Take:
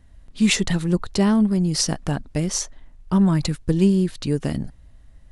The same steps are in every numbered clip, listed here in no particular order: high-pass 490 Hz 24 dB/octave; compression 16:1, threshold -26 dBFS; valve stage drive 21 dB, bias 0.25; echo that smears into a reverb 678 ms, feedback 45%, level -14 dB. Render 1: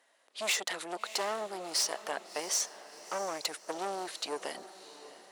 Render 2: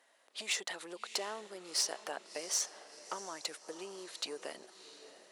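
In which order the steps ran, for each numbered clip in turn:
valve stage > high-pass > compression > echo that smears into a reverb; compression > echo that smears into a reverb > valve stage > high-pass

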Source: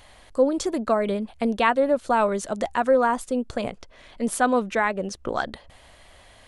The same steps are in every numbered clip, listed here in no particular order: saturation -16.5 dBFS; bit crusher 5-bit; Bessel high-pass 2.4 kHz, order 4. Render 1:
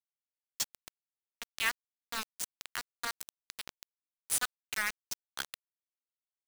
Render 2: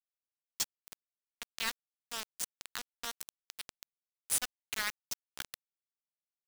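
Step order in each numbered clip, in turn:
Bessel high-pass > saturation > bit crusher; saturation > Bessel high-pass > bit crusher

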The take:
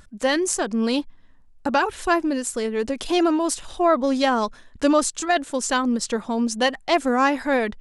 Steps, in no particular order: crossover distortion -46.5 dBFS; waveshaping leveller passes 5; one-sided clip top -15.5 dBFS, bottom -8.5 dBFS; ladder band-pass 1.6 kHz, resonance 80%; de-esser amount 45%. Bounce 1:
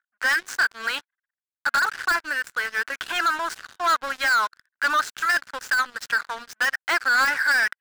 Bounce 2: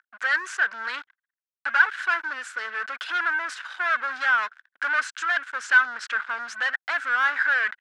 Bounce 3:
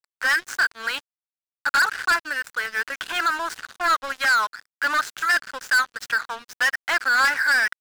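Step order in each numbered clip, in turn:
crossover distortion > ladder band-pass > one-sided clip > waveshaping leveller > de-esser; crossover distortion > one-sided clip > waveshaping leveller > ladder band-pass > de-esser; one-sided clip > ladder band-pass > de-esser > waveshaping leveller > crossover distortion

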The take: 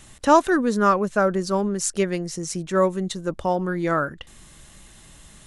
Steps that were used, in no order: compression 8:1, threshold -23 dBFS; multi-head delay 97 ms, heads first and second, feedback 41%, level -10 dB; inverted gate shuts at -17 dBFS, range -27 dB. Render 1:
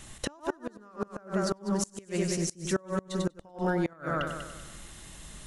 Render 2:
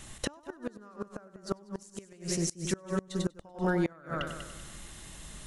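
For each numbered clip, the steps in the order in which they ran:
multi-head delay > compression > inverted gate; compression > multi-head delay > inverted gate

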